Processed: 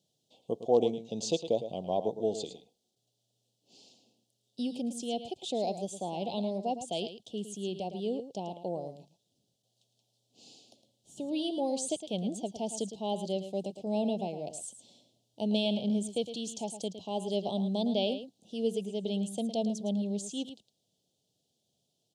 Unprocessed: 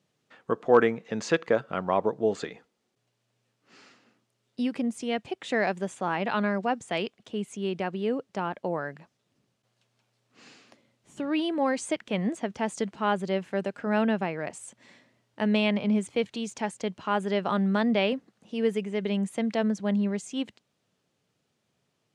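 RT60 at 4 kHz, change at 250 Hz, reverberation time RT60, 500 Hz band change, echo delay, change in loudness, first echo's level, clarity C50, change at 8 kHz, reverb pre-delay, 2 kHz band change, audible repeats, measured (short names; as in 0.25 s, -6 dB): none, -5.5 dB, none, -4.5 dB, 0.11 s, -5.5 dB, -11.0 dB, none, +2.0 dB, none, -20.5 dB, 1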